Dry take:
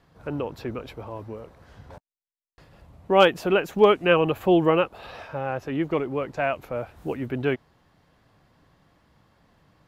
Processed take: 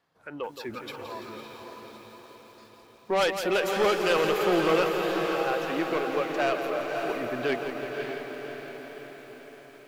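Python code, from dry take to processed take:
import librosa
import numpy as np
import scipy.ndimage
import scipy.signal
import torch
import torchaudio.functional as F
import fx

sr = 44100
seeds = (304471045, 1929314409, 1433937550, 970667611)

p1 = fx.highpass(x, sr, hz=540.0, slope=6)
p2 = fx.level_steps(p1, sr, step_db=15)
p3 = p1 + (p2 * 10.0 ** (-1.5 / 20.0))
p4 = fx.noise_reduce_blind(p3, sr, reduce_db=11)
p5 = 10.0 ** (-20.0 / 20.0) * np.tanh(p4 / 10.0 ** (-20.0 / 20.0))
p6 = p5 + fx.echo_diffused(p5, sr, ms=572, feedback_pct=57, wet_db=-5.0, dry=0)
y = fx.echo_crushed(p6, sr, ms=169, feedback_pct=80, bits=9, wet_db=-9.5)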